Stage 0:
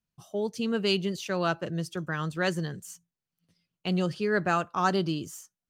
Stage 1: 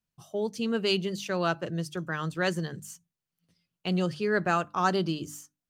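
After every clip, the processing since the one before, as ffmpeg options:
-af "bandreject=f=50:t=h:w=6,bandreject=f=100:t=h:w=6,bandreject=f=150:t=h:w=6,bandreject=f=200:t=h:w=6,bandreject=f=250:t=h:w=6,bandreject=f=300:t=h:w=6"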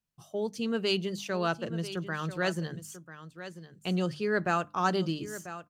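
-af "aecho=1:1:992:0.224,volume=-2dB"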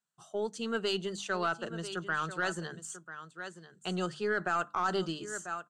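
-af "highpass=260,equalizer=f=280:t=q:w=4:g=-9,equalizer=f=530:t=q:w=4:g=-6,equalizer=f=1.4k:t=q:w=4:g=7,equalizer=f=2.3k:t=q:w=4:g=-9,equalizer=f=5.2k:t=q:w=4:g=-7,equalizer=f=7.8k:t=q:w=4:g=7,lowpass=f=8.9k:w=0.5412,lowpass=f=8.9k:w=1.3066,aeval=exprs='0.237*(cos(1*acos(clip(val(0)/0.237,-1,1)))-cos(1*PI/2))+0.0075*(cos(6*acos(clip(val(0)/0.237,-1,1)))-cos(6*PI/2))':c=same,alimiter=limit=-22dB:level=0:latency=1:release=32,volume=1.5dB"

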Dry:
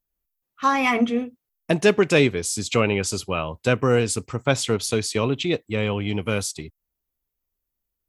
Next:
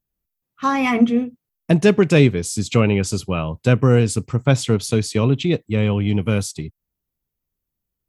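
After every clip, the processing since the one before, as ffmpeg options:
-af "equalizer=f=140:t=o:w=2.1:g=11,volume=-1dB"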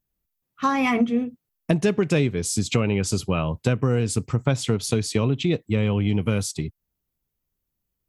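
-af "acompressor=threshold=-19dB:ratio=4,volume=1dB"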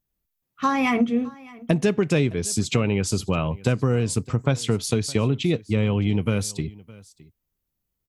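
-af "aecho=1:1:613:0.0794"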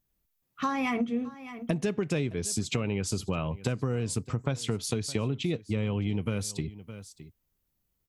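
-af "acompressor=threshold=-36dB:ratio=2,volume=2dB"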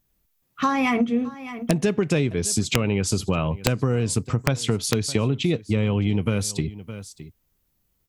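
-af "aeval=exprs='(mod(5.96*val(0)+1,2)-1)/5.96':c=same,volume=7.5dB"

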